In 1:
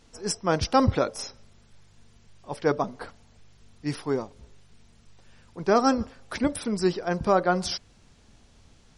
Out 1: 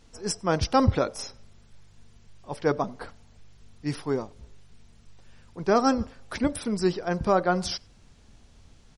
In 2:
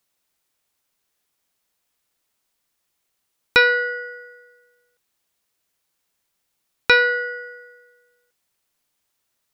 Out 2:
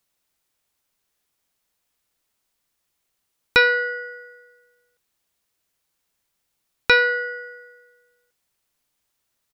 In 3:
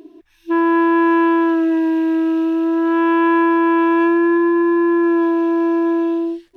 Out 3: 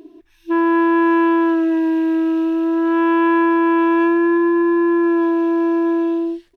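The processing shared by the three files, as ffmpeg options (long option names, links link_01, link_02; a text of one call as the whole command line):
ffmpeg -i in.wav -filter_complex "[0:a]lowshelf=frequency=110:gain=5,asplit=2[link_01][link_02];[link_02]adelay=93.29,volume=-29dB,highshelf=frequency=4000:gain=-2.1[link_03];[link_01][link_03]amix=inputs=2:normalize=0,volume=-1dB" out.wav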